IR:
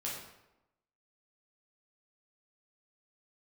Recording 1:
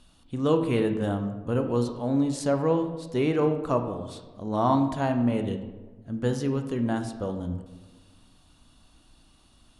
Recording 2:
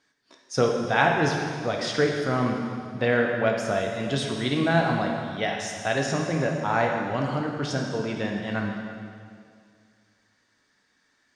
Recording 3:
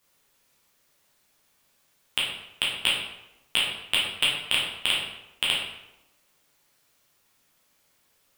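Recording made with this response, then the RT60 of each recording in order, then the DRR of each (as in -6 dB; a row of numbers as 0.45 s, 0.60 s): 3; 1.2 s, 2.2 s, 0.95 s; 6.0 dB, 0.5 dB, -5.5 dB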